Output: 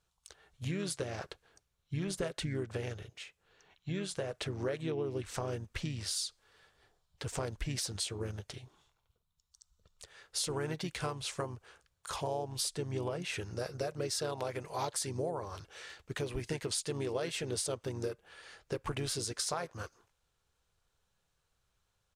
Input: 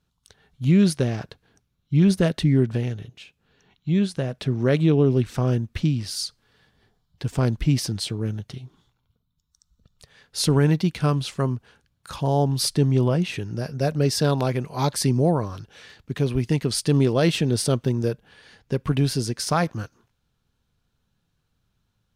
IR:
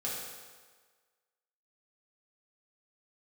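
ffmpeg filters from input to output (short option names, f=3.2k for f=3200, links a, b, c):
-filter_complex "[0:a]equalizer=f=125:t=o:w=1:g=-5,equalizer=f=250:t=o:w=1:g=-11,equalizer=f=500:t=o:w=1:g=6,equalizer=f=1k:t=o:w=1:g=3,equalizer=f=2k:t=o:w=1:g=3,equalizer=f=8k:t=o:w=1:g=9,acompressor=threshold=-27dB:ratio=6,asplit=2[a][b];[b]asetrate=35002,aresample=44100,atempo=1.25992,volume=-8dB[c];[a][c]amix=inputs=2:normalize=0,volume=-6.5dB"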